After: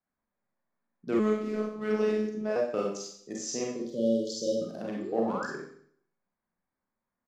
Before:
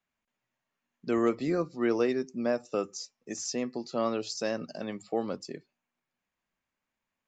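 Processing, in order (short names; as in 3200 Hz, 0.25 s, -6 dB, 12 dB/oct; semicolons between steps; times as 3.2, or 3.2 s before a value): Wiener smoothing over 15 samples; 3.75–4.61 spectral delete 590–2900 Hz; downsampling 32000 Hz; 4.96–5.47 painted sound rise 270–1800 Hz -38 dBFS; Schroeder reverb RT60 0.61 s, combs from 31 ms, DRR -2.5 dB; 1.19–2.56 robotiser 214 Hz; gain -2.5 dB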